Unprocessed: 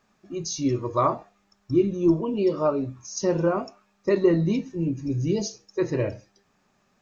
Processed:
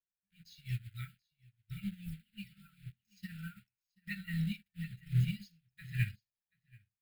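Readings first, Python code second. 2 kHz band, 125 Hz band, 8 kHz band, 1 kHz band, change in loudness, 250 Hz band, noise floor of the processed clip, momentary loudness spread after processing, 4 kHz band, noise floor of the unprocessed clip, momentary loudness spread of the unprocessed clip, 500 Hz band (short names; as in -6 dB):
-5.5 dB, -7.0 dB, n/a, under -35 dB, -14.5 dB, -19.0 dB, under -85 dBFS, 19 LU, -12.0 dB, -68 dBFS, 11 LU, under -40 dB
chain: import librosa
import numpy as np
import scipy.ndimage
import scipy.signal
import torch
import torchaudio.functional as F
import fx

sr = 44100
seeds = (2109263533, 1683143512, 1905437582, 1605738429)

p1 = fx.peak_eq(x, sr, hz=150.0, db=-12.0, octaves=0.4)
p2 = fx.quant_dither(p1, sr, seeds[0], bits=6, dither='none')
p3 = p1 + (p2 * librosa.db_to_amplitude(-7.5))
p4 = fx.brickwall_bandstop(p3, sr, low_hz=200.0, high_hz=1300.0)
p5 = fx.fixed_phaser(p4, sr, hz=2600.0, stages=4)
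p6 = p5 + fx.echo_single(p5, sr, ms=732, db=-10.5, dry=0)
p7 = fx.upward_expand(p6, sr, threshold_db=-50.0, expansion=2.5)
y = p7 * librosa.db_to_amplitude(2.0)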